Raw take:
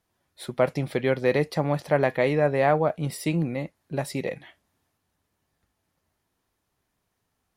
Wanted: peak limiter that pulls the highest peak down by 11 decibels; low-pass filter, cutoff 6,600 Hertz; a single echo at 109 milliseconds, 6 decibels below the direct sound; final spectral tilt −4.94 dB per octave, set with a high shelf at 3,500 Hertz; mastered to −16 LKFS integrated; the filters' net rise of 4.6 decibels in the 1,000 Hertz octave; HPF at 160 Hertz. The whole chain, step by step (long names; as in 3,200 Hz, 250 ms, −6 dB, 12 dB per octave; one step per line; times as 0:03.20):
high-pass filter 160 Hz
low-pass filter 6,600 Hz
parametric band 1,000 Hz +6.5 dB
high-shelf EQ 3,500 Hz +4.5 dB
brickwall limiter −16 dBFS
single-tap delay 109 ms −6 dB
level +12 dB